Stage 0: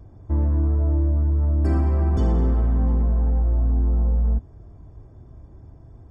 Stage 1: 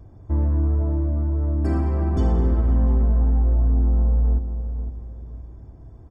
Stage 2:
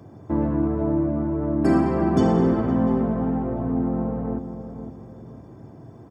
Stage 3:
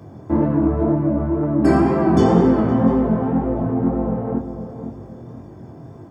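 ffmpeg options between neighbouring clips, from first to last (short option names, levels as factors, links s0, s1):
-filter_complex "[0:a]asplit=2[s0][s1];[s1]adelay=512,lowpass=f=1200:p=1,volume=0.355,asplit=2[s2][s3];[s3]adelay=512,lowpass=f=1200:p=1,volume=0.36,asplit=2[s4][s5];[s5]adelay=512,lowpass=f=1200:p=1,volume=0.36,asplit=2[s6][s7];[s7]adelay=512,lowpass=f=1200:p=1,volume=0.36[s8];[s0][s2][s4][s6][s8]amix=inputs=5:normalize=0"
-af "highpass=f=130:w=0.5412,highpass=f=130:w=1.3066,volume=2.51"
-af "flanger=delay=19.5:depth=6.3:speed=2,volume=2.51"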